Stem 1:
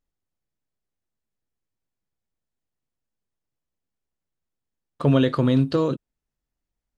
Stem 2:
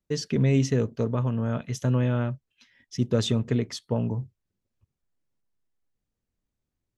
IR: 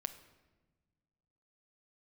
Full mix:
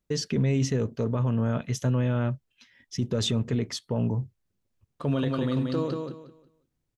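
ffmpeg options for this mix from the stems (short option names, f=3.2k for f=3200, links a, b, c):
-filter_complex "[0:a]volume=-8dB,asplit=3[a][b][c];[b]volume=-21.5dB[d];[c]volume=-4dB[e];[1:a]volume=2dB[f];[2:a]atrim=start_sample=2205[g];[d][g]afir=irnorm=-1:irlink=0[h];[e]aecho=0:1:180|360|540|720:1|0.25|0.0625|0.0156[i];[a][f][h][i]amix=inputs=4:normalize=0,alimiter=limit=-17.5dB:level=0:latency=1:release=13"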